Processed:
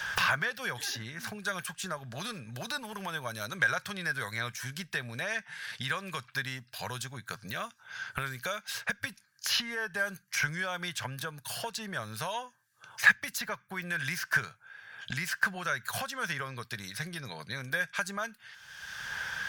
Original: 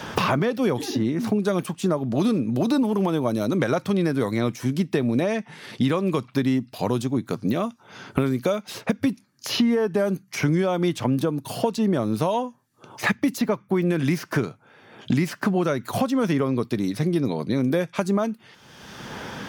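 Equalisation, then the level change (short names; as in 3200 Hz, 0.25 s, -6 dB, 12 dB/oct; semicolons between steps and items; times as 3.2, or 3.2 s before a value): passive tone stack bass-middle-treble 10-0-10; bell 1600 Hz +14.5 dB 0.31 oct; 0.0 dB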